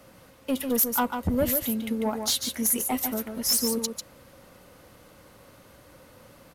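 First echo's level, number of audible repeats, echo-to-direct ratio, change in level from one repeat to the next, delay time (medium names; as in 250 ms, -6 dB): -6.5 dB, 1, -6.5 dB, no regular repeats, 145 ms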